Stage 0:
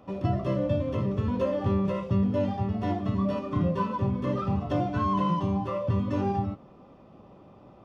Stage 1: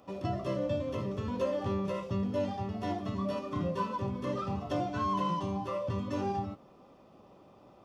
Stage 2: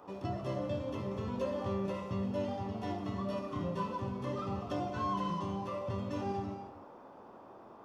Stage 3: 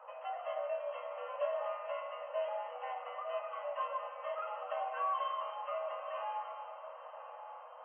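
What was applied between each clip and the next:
tone controls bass -6 dB, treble +9 dB; gain -3.5 dB
band noise 230–1100 Hz -51 dBFS; non-linear reverb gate 0.34 s flat, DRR 7 dB; gain -4 dB
diffused feedback echo 1.011 s, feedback 42%, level -11.5 dB; frequency shift +54 Hz; FFT band-pass 480–3200 Hz; gain +1 dB

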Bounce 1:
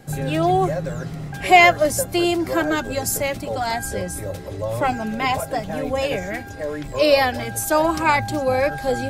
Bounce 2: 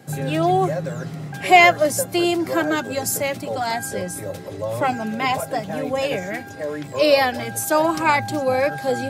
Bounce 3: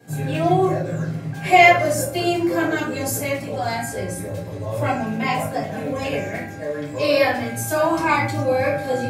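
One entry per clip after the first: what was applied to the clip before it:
HPF 110 Hz 24 dB/oct
reverb RT60 0.55 s, pre-delay 3 ms, DRR -8 dB; gain -11 dB

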